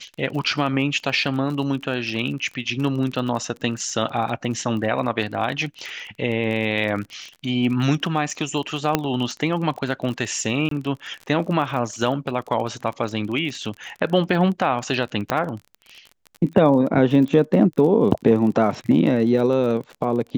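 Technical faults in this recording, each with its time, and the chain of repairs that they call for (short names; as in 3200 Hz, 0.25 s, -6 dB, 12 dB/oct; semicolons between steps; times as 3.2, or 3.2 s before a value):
crackle 32/s -29 dBFS
8.95 pop -3 dBFS
10.69–10.71 gap 23 ms
15.3 pop -7 dBFS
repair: de-click; interpolate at 10.69, 23 ms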